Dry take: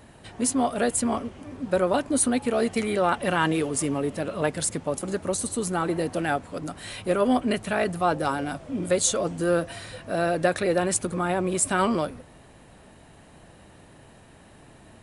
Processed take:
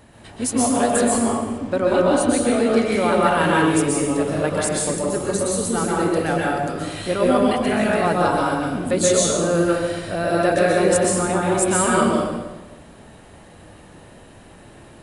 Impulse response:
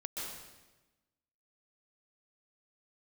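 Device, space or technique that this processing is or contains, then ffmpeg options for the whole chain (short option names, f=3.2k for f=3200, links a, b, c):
bathroom: -filter_complex "[1:a]atrim=start_sample=2205[a];[0:a][a]afir=irnorm=-1:irlink=0,asettb=1/sr,asplit=3[b][c][d];[b]atrim=end=1.584[e];[c]atrim=start=1.58:end=2.92,asetpts=PTS-STARTPTS,afade=t=in:d=0.004:c=qsin,afade=t=out:st=1.336:d=0.004:c=qsin,lowpass=7.2k[f];[d]atrim=start=2.916[g];[e][f]acrossfade=d=0.004:c1=hsin:c2=qsin[h];[h][g]acrossfade=d=0.004:c1=qsin:c2=hsin,volume=5dB"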